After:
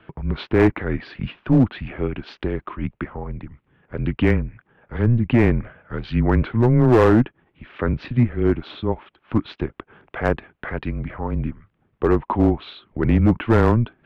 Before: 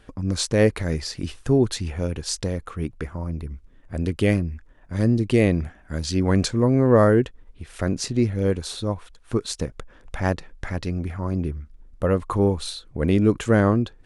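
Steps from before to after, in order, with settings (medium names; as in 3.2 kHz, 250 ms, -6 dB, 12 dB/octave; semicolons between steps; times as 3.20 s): low-pass that closes with the level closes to 2.4 kHz, closed at -16.5 dBFS; mistuned SSB -120 Hz 180–3200 Hz; overload inside the chain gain 13.5 dB; trim +5 dB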